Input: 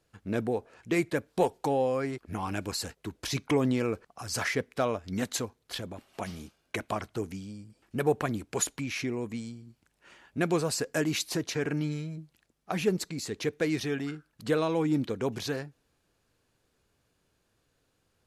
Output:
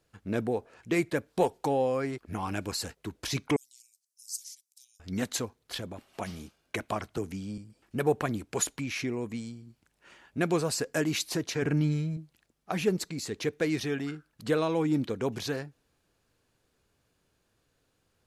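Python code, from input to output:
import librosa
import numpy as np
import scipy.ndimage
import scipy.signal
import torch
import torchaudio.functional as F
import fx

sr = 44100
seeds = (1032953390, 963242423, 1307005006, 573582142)

y = fx.cheby2_highpass(x, sr, hz=1400.0, order=4, stop_db=70, at=(3.56, 5.0))
y = fx.band_squash(y, sr, depth_pct=70, at=(7.17, 7.58))
y = fx.low_shelf(y, sr, hz=160.0, db=11.5, at=(11.62, 12.17))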